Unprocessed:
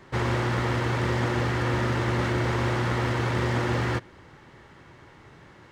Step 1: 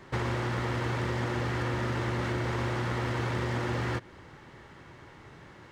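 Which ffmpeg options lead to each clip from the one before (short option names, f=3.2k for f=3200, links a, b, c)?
-af "acompressor=threshold=-28dB:ratio=4"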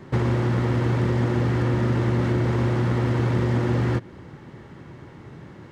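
-af "equalizer=f=180:w=0.4:g=12"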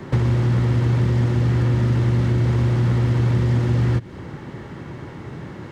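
-filter_complex "[0:a]acrossover=split=170|2500[a][b][c];[a]acompressor=threshold=-24dB:ratio=4[d];[b]acompressor=threshold=-37dB:ratio=4[e];[c]acompressor=threshold=-51dB:ratio=4[f];[d][e][f]amix=inputs=3:normalize=0,volume=8dB"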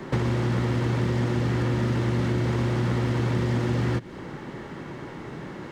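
-af "equalizer=f=91:t=o:w=1.2:g=-11.5"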